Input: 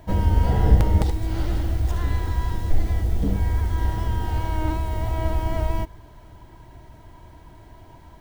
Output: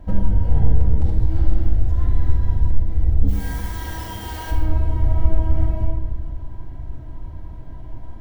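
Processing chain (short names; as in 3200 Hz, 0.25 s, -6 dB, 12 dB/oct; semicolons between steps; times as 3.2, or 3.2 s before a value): tilt -2.5 dB/oct, from 3.27 s +3 dB/oct, from 4.5 s -2.5 dB/oct; compressor 5:1, threshold -15 dBFS, peak gain reduction 16 dB; shoebox room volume 1200 m³, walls mixed, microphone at 2.1 m; gain -4 dB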